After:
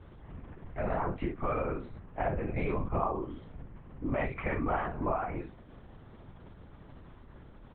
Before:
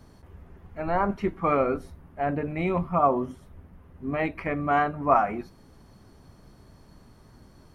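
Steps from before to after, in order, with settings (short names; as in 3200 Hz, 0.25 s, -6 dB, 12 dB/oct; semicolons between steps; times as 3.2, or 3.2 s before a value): compressor 10:1, threshold -29 dBFS, peak gain reduction 14.5 dB; early reflections 35 ms -8 dB, 58 ms -8 dB; LPC vocoder at 8 kHz whisper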